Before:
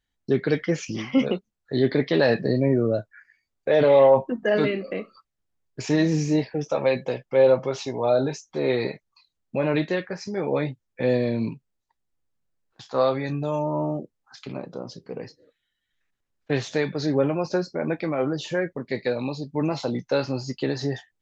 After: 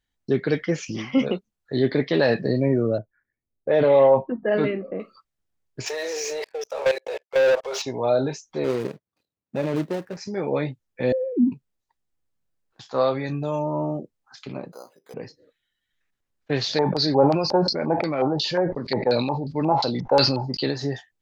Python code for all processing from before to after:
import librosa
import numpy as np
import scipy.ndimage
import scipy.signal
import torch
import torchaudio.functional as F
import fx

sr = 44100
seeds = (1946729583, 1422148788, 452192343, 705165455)

y = fx.chain(x, sr, fx.env_lowpass(base_hz=470.0, full_db=-12.0),
    fx.high_shelf(hz=3800.0, db=-8.0), at=(2.98, 5.0))
y = fx.chain(y, sr, fx.steep_highpass(hz=400.0, slope=72),
    fx.level_steps(step_db=20),
    fx.leveller(passes=3), at=(5.86, 7.82))
y = fx.chain(y, sr, fx.median_filter(points=41),
    fx.highpass(hz=100.0, slope=12), at=(8.64, 10.17))
y = fx.chain(y, sr, fx.sine_speech(),
    fx.lowpass_res(hz=350.0, q=3.8), at=(11.12, 11.52))
y = fx.chain(y, sr, fx.highpass(hz=710.0, slope=12),
    fx.resample_bad(factor=8, down='filtered', up='hold'), at=(14.72, 15.14))
y = fx.chain(y, sr, fx.filter_lfo_lowpass(shape='square', hz=2.8, low_hz=860.0, high_hz=4600.0, q=6.5),
    fx.sustainer(db_per_s=51.0), at=(16.61, 20.71))